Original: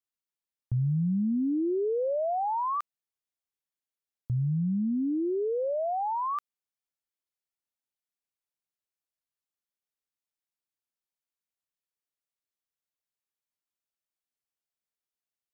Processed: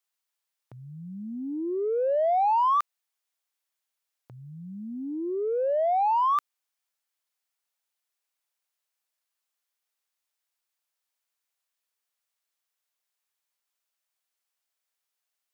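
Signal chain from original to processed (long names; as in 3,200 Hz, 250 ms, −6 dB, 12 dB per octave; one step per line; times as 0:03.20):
high-pass filter 620 Hz 12 dB per octave
in parallel at −10.5 dB: soft clipping −35 dBFS, distortion −11 dB
on the sum: level +6.5 dB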